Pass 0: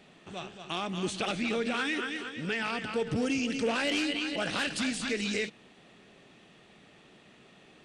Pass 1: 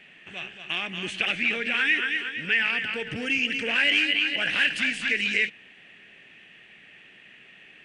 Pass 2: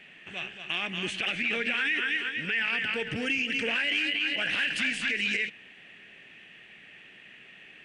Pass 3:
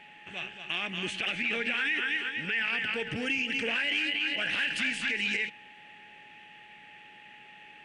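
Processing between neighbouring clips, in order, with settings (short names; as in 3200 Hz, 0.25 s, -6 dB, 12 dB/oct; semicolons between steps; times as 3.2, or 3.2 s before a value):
band shelf 2200 Hz +16 dB 1.2 oct; gain -4 dB
limiter -18.5 dBFS, peak gain reduction 9 dB
whine 840 Hz -53 dBFS; gain -1.5 dB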